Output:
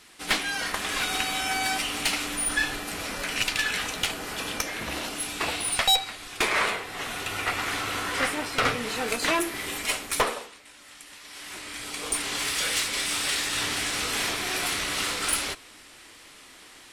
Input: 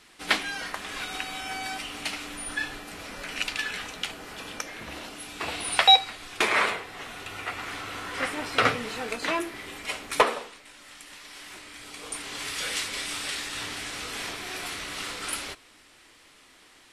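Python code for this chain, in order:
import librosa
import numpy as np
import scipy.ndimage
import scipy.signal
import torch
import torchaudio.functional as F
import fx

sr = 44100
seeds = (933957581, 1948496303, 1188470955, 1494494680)

y = fx.high_shelf(x, sr, hz=6800.0, db=fx.steps((0.0, 6.5), (9.06, 11.5), (10.45, 4.5)))
y = fx.rider(y, sr, range_db=4, speed_s=0.5)
y = fx.tube_stage(y, sr, drive_db=20.0, bias=0.45)
y = y * librosa.db_to_amplitude(4.0)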